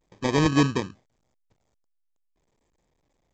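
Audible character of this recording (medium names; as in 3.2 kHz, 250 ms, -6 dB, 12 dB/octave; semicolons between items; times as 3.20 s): aliases and images of a low sample rate 1.4 kHz, jitter 0%; A-law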